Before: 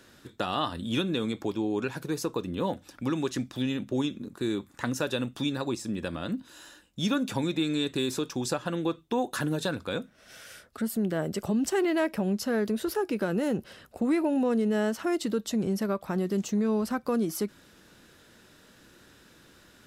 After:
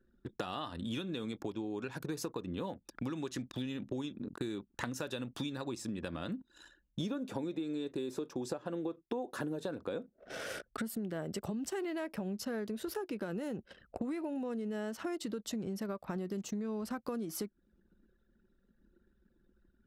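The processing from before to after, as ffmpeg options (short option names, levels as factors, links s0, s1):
-filter_complex "[0:a]asettb=1/sr,asplit=3[s0][s1][s2];[s0]atrim=end=7.004[s3];[s1]atrim=start=7:end=10.62,asetpts=PTS-STARTPTS,afade=t=in:d=0.004:c=qsin,afade=t=out:st=3.616:d=0.004:c=qsin,equalizer=f=440:t=o:w=2.5:g=13[s4];[s2]atrim=start=10.616[s5];[s3][s4]acrossfade=d=0.004:c1=hsin:c2=qsin[s6];[s6][s5]acrossfade=d=0.004:c1=qsin:c2=hsin,anlmdn=0.0398,acompressor=threshold=0.0126:ratio=12,volume=1.41"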